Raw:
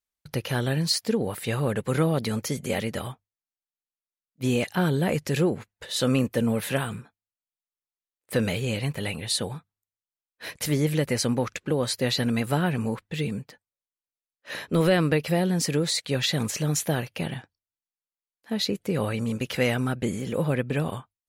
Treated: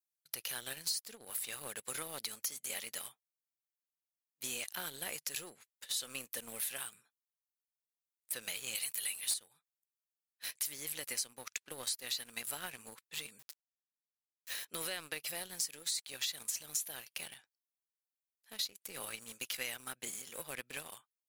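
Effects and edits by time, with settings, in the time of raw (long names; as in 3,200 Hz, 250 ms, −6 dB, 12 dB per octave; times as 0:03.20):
0:08.75–0:09.34: spectral tilt +3.5 dB per octave
0:13.39–0:14.65: centre clipping without the shift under −42 dBFS
whole clip: first difference; leveller curve on the samples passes 2; downward compressor 4 to 1, threshold −35 dBFS; level −1.5 dB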